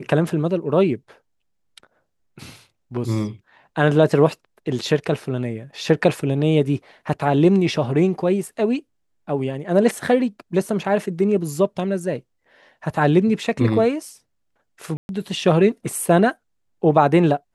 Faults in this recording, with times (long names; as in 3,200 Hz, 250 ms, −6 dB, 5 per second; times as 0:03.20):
0:14.97–0:15.09: drop-out 121 ms